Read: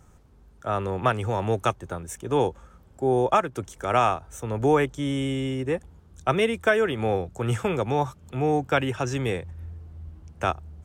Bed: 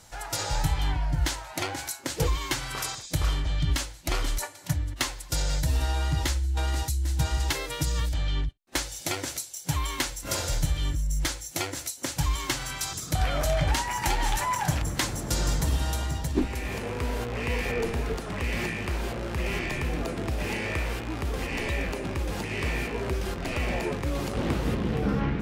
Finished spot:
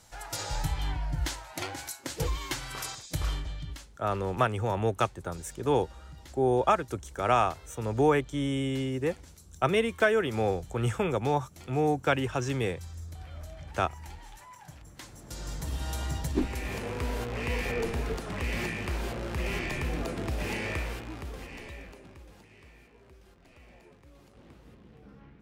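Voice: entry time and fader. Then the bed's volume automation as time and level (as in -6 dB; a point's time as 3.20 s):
3.35 s, -3.0 dB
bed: 3.34 s -5 dB
3.98 s -22.5 dB
14.78 s -22.5 dB
16.11 s -2.5 dB
20.69 s -2.5 dB
22.72 s -26.5 dB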